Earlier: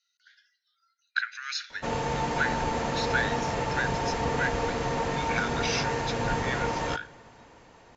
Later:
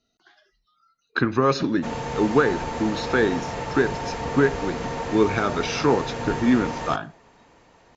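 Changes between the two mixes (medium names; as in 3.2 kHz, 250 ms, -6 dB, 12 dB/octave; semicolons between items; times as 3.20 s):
speech: remove rippled Chebyshev high-pass 1.4 kHz, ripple 3 dB; reverb: off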